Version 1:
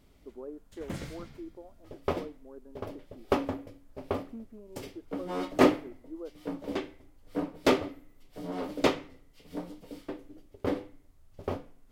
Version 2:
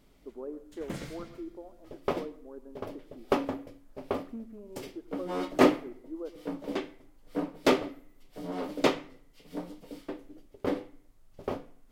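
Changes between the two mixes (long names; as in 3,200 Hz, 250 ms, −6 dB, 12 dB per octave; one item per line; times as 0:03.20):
background: add parametric band 79 Hz −13 dB 0.58 octaves
reverb: on, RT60 0.55 s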